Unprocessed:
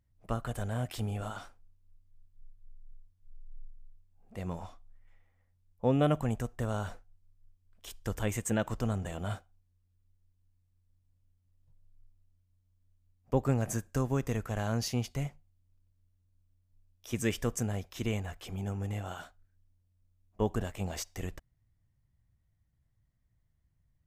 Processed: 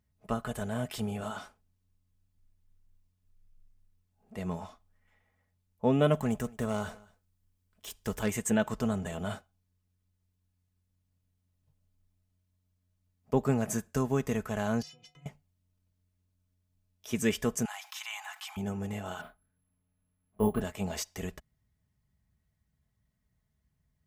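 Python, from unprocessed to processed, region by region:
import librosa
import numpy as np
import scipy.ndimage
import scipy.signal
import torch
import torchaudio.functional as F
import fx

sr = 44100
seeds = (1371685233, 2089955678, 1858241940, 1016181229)

y = fx.chain(x, sr, fx.self_delay(depth_ms=0.093),
    fx.high_shelf(hz=8600.0, db=5.0),
    fx.echo_single(ms=219, db=-23.5), at=(6.13, 8.3))
y = fx.chain(y, sr, fx.lowpass(hz=4700.0, slope=12),
    fx.over_compress(threshold_db=-39.0, ratio=-1.0),
    fx.stiff_resonator(f0_hz=150.0, decay_s=0.52, stiffness=0.03), at=(14.82, 15.26))
y = fx.chain(y, sr, fx.cheby1_highpass(hz=770.0, order=6),
    fx.env_flatten(amount_pct=50), at=(17.65, 18.57))
y = fx.chain(y, sr, fx.resample_bad(factor=4, down='none', up='zero_stuff'),
    fx.air_absorb(metres=470.0),
    fx.doubler(ms=29.0, db=-3.0), at=(19.21, 20.6))
y = scipy.signal.sosfilt(scipy.signal.butter(2, 60.0, 'highpass', fs=sr, output='sos'), y)
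y = y + 0.51 * np.pad(y, (int(4.7 * sr / 1000.0), 0))[:len(y)]
y = F.gain(torch.from_numpy(y), 1.5).numpy()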